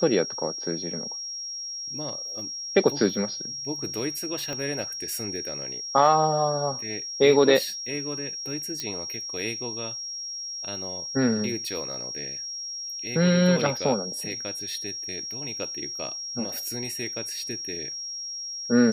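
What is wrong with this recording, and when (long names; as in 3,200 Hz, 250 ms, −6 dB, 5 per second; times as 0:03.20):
whistle 5,600 Hz −32 dBFS
0:04.53: click −19 dBFS
0:08.80: click −16 dBFS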